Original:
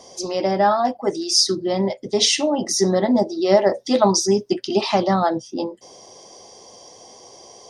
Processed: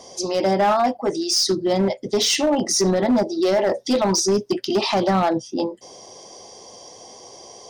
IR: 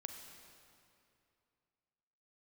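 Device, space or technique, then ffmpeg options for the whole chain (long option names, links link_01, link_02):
limiter into clipper: -af "alimiter=limit=-11dB:level=0:latency=1:release=27,asoftclip=type=hard:threshold=-15.5dB,volume=2dB"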